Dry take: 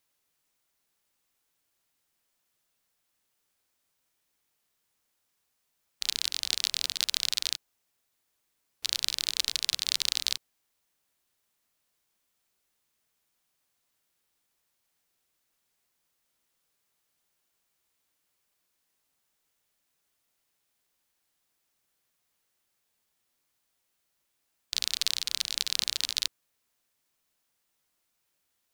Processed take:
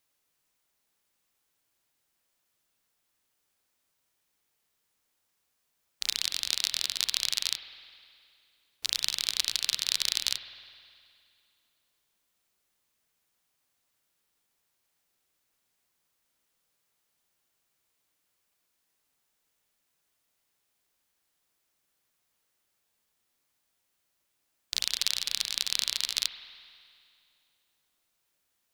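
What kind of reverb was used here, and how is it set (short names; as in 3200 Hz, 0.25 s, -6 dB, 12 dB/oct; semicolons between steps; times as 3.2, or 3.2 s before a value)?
spring tank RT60 2.4 s, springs 51 ms, chirp 50 ms, DRR 9 dB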